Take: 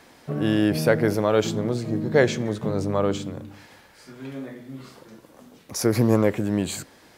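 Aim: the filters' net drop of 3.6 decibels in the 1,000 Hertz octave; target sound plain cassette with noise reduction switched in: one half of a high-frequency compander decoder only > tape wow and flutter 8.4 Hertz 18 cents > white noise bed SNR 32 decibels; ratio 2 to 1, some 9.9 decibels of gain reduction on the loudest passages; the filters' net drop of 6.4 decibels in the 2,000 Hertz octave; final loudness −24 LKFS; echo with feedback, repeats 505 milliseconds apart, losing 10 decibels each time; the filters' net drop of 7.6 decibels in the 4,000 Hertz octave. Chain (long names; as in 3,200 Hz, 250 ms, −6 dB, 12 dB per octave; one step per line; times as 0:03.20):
parametric band 1,000 Hz −3 dB
parametric band 2,000 Hz −5.5 dB
parametric band 4,000 Hz −8.5 dB
downward compressor 2 to 1, threshold −33 dBFS
repeating echo 505 ms, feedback 32%, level −10 dB
one half of a high-frequency compander decoder only
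tape wow and flutter 8.4 Hz 18 cents
white noise bed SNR 32 dB
level +8.5 dB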